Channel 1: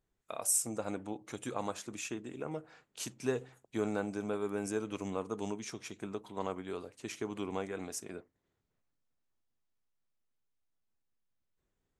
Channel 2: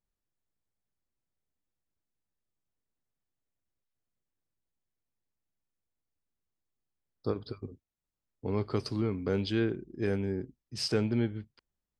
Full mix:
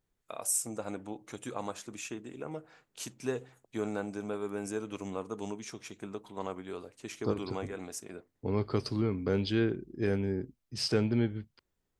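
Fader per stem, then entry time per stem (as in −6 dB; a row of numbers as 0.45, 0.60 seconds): −0.5, +0.5 decibels; 0.00, 0.00 seconds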